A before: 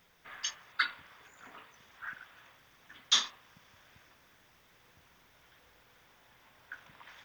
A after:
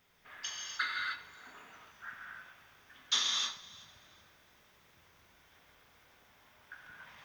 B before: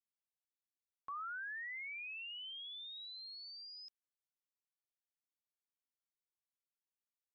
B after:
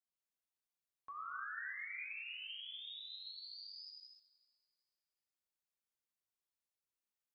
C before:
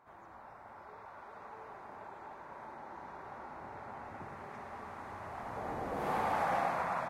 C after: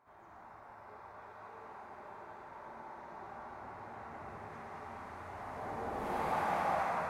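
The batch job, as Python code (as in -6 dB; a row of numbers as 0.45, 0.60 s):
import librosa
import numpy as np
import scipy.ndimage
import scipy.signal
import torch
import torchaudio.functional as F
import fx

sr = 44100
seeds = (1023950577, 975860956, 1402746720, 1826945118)

y = fx.echo_thinned(x, sr, ms=380, feedback_pct=25, hz=420.0, wet_db=-21)
y = fx.rev_gated(y, sr, seeds[0], gate_ms=330, shape='flat', drr_db=-3.0)
y = y * librosa.db_to_amplitude(-5.5)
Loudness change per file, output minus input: -2.5, -1.0, -1.5 LU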